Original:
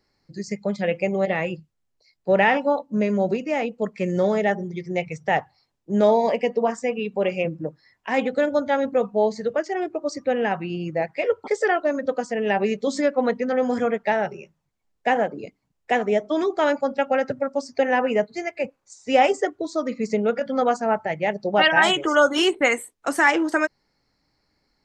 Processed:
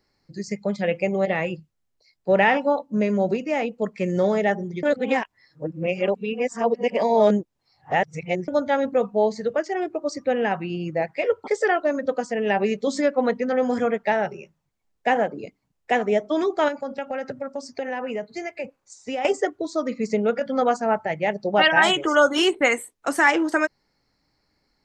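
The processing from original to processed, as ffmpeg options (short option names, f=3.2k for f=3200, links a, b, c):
-filter_complex "[0:a]asettb=1/sr,asplit=3[a][b][c];[a]atrim=end=16.684[d];[b]atrim=start=16.68:end=19.25,asetpts=PTS-STARTPTS,afade=t=in:d=0.004:c=qsin,afade=t=out:st=2.566:d=0.004:c=qsin,acompressor=threshold=-26dB:ratio=4:attack=3.2:release=140:knee=1:detection=peak[e];[c]atrim=start=19.246[f];[d][e]acrossfade=d=0.004:c1=hsin:c2=qsin[g];[g][f]acrossfade=d=0.004:c1=qsin:c2=hsin,asplit=3[h][i][j];[h]atrim=end=4.832[k];[i]atrim=start=4.828:end=8.482,asetpts=PTS-STARTPTS,areverse[l];[j]atrim=start=8.478[m];[k][l]acrossfade=d=0.004:c1=hsin:c2=hsin[n];[n][m]acrossfade=d=0.004:c1=hsin:c2=hsin"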